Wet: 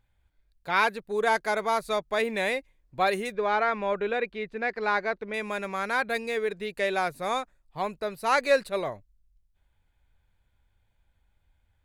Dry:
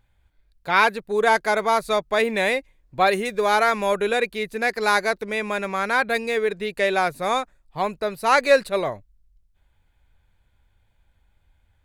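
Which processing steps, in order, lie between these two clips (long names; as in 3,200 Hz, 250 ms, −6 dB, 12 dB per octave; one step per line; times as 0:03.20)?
0:03.32–0:05.34: low-pass filter 2,800 Hz 12 dB per octave
level −6 dB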